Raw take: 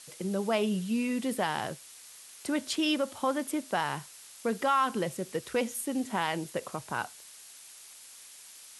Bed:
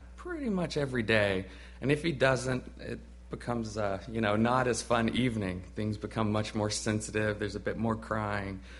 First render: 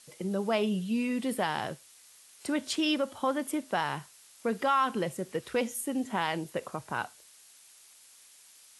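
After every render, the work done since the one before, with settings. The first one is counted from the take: noise print and reduce 6 dB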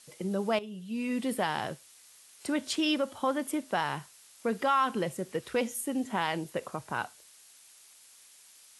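0.59–1.13 s: fade in quadratic, from -14 dB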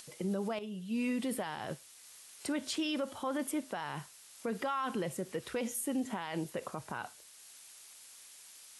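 upward compressor, threshold -49 dBFS; peak limiter -26.5 dBFS, peak gain reduction 11.5 dB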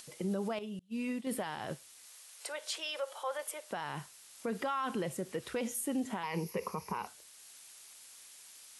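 0.79–1.27 s: expander -30 dBFS; 2.06–3.71 s: steep high-pass 440 Hz 48 dB/octave; 6.23–7.07 s: rippled EQ curve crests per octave 0.83, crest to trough 14 dB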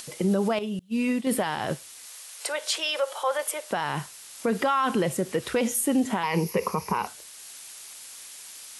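trim +11 dB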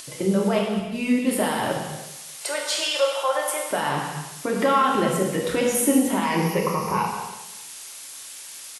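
feedback delay 195 ms, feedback 38%, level -17.5 dB; gated-style reverb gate 420 ms falling, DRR -1.5 dB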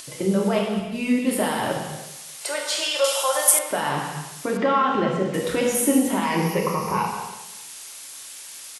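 3.04–3.59 s: tone controls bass -4 dB, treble +14 dB; 4.57–5.34 s: distance through air 160 m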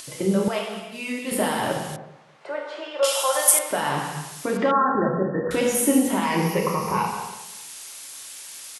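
0.48–1.32 s: high-pass 800 Hz 6 dB/octave; 1.96–3.03 s: low-pass 1.3 kHz; 4.71–5.51 s: brick-wall FIR low-pass 1.9 kHz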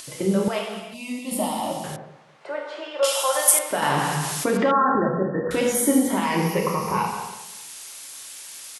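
0.94–1.84 s: static phaser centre 430 Hz, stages 6; 3.82–4.98 s: level flattener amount 50%; 5.72–6.17 s: Butterworth band-stop 2.7 kHz, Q 4.8

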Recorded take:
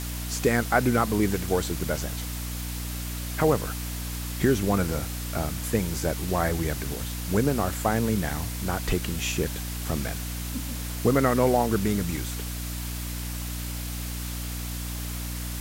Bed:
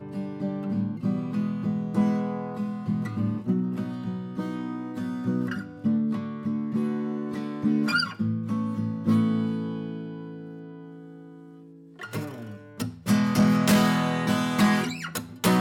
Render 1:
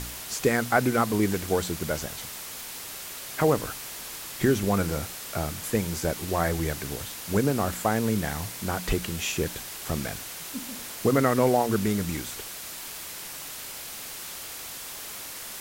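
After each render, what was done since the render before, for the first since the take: de-hum 60 Hz, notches 5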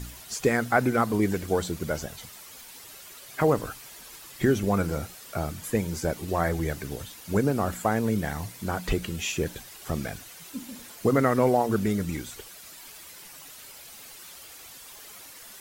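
noise reduction 10 dB, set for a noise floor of -39 dBFS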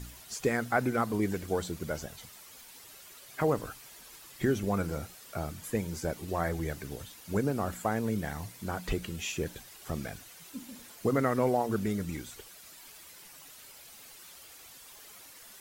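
trim -5.5 dB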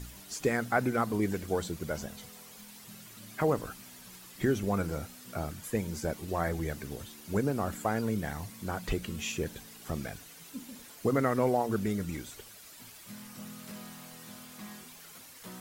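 add bed -26 dB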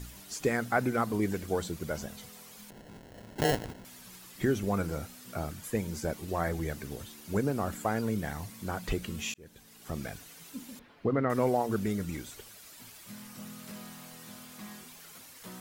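2.70–3.85 s: sample-rate reducer 1.2 kHz; 9.34–10.06 s: fade in; 10.79–11.30 s: distance through air 370 m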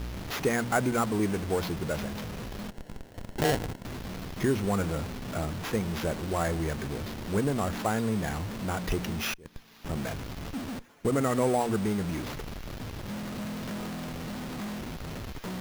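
in parallel at -3.5 dB: Schmitt trigger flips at -43 dBFS; on the sum: sample-rate reducer 8.5 kHz, jitter 0%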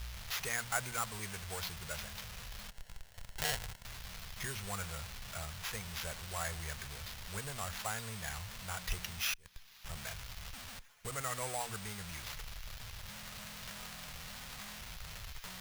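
amplifier tone stack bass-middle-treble 10-0-10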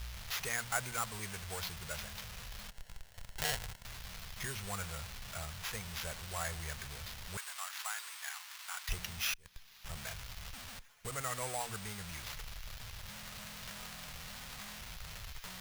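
7.37–8.89 s: high-pass 940 Hz 24 dB/octave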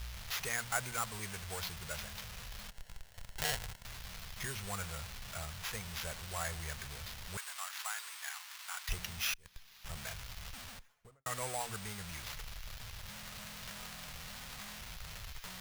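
10.63–11.26 s: studio fade out

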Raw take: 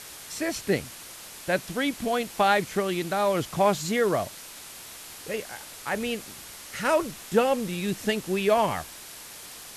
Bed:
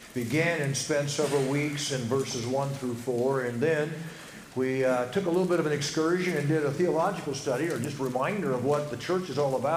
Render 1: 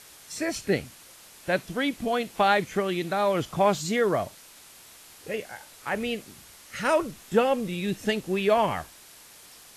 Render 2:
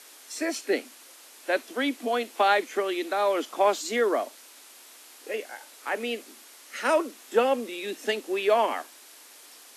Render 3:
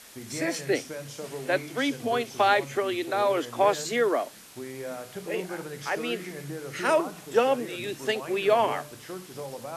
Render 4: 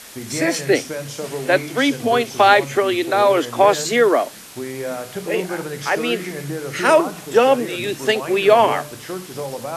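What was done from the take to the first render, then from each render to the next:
noise print and reduce 7 dB
steep high-pass 240 Hz 72 dB/octave
add bed -11 dB
trim +9.5 dB; peak limiter -2 dBFS, peak gain reduction 2.5 dB

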